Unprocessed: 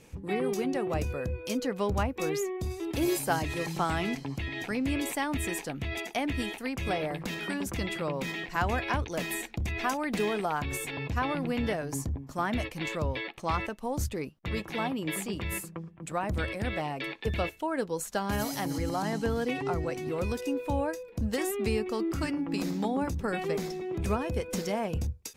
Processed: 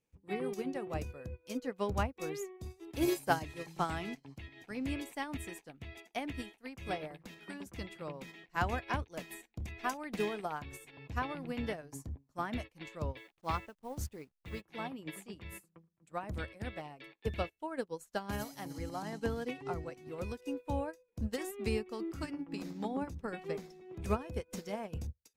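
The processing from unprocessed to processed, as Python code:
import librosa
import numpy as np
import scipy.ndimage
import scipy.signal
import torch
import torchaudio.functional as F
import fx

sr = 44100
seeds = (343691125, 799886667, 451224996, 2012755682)

y = fx.delta_hold(x, sr, step_db=-47.0, at=(13.16, 14.6), fade=0.02)
y = fx.high_shelf(y, sr, hz=5700.0, db=-4.5, at=(22.48, 23.69))
y = fx.upward_expand(y, sr, threshold_db=-44.0, expansion=2.5)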